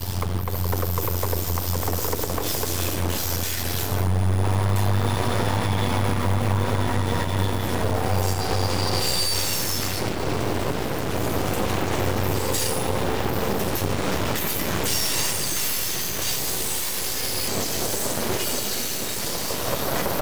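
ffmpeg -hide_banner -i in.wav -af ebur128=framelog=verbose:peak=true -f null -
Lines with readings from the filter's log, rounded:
Integrated loudness:
  I:         -24.1 LUFS
  Threshold: -34.1 LUFS
Loudness range:
  LRA:         1.6 LU
  Threshold: -43.9 LUFS
  LRA low:   -24.9 LUFS
  LRA high:  -23.2 LUFS
True peak:
  Peak:       -7.5 dBFS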